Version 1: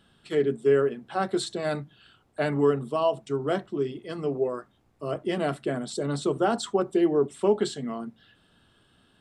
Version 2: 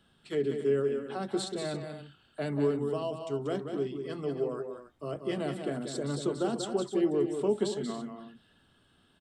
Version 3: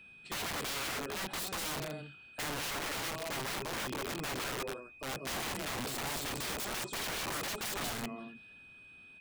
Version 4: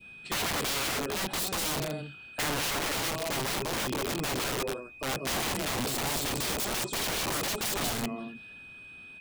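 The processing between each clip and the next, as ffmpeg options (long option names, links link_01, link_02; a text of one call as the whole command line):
ffmpeg -i in.wav -filter_complex "[0:a]acrossover=split=500|3000[link_01][link_02][link_03];[link_02]acompressor=threshold=-34dB:ratio=6[link_04];[link_01][link_04][link_03]amix=inputs=3:normalize=0,asplit=2[link_05][link_06];[link_06]aecho=0:1:186.6|277:0.447|0.251[link_07];[link_05][link_07]amix=inputs=2:normalize=0,volume=-4.5dB" out.wav
ffmpeg -i in.wav -af "aeval=exprs='val(0)+0.00224*sin(2*PI*2500*n/s)':channel_layout=same,aeval=exprs='(mod(42.2*val(0)+1,2)-1)/42.2':channel_layout=same" out.wav
ffmpeg -i in.wav -af "adynamicequalizer=threshold=0.002:dfrequency=1600:dqfactor=0.83:tfrequency=1600:tqfactor=0.83:attack=5:release=100:ratio=0.375:range=2:mode=cutabove:tftype=bell,volume=7.5dB" out.wav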